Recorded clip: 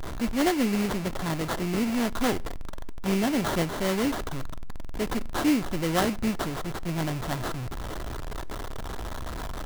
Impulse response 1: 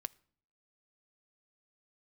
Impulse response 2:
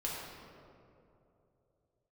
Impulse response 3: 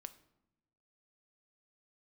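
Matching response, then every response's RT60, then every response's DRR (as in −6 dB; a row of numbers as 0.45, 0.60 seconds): 1; 0.55 s, 2.8 s, non-exponential decay; 14.0, −5.5, 11.0 decibels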